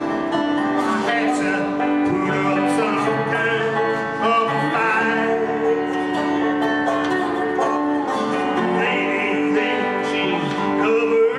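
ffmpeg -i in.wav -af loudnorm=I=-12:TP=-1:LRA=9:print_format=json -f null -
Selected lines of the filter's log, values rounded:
"input_i" : "-19.5",
"input_tp" : "-7.0",
"input_lra" : "0.9",
"input_thresh" : "-29.5",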